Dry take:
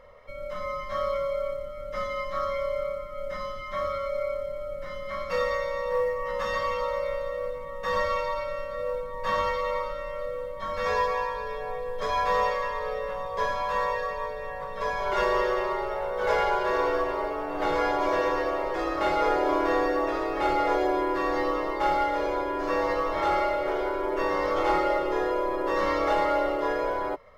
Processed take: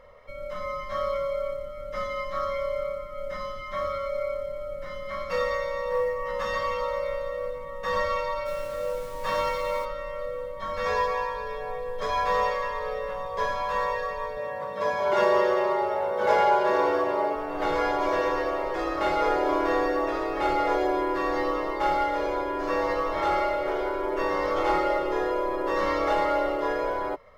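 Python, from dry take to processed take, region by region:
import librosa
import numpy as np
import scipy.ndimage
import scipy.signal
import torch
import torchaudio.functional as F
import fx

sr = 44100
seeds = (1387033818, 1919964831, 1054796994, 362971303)

y = fx.bass_treble(x, sr, bass_db=-2, treble_db=3, at=(8.45, 9.84), fade=0.02)
y = fx.comb(y, sr, ms=6.7, depth=0.43, at=(8.45, 9.84), fade=0.02)
y = fx.dmg_noise_colour(y, sr, seeds[0], colour='pink', level_db=-48.0, at=(8.45, 9.84), fade=0.02)
y = fx.chain(y, sr, fx.highpass(hz=81.0, slope=24),
    fx.small_body(hz=(220.0, 330.0, 590.0, 830.0), ring_ms=45, db=7), at=(14.37, 17.35))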